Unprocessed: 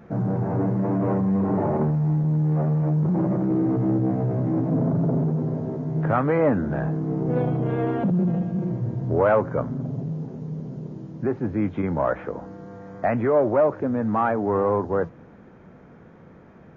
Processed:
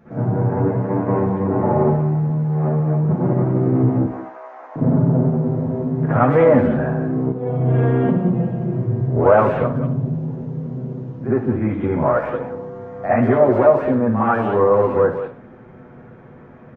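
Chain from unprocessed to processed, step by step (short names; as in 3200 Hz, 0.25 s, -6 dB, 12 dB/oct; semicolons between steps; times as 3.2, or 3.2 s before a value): 4–4.76 HPF 850 Hz 24 dB/oct; 7.26–7.68 fade in linear; speakerphone echo 0.18 s, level -9 dB; reverb, pre-delay 54 ms, DRR -9.5 dB; gain -5 dB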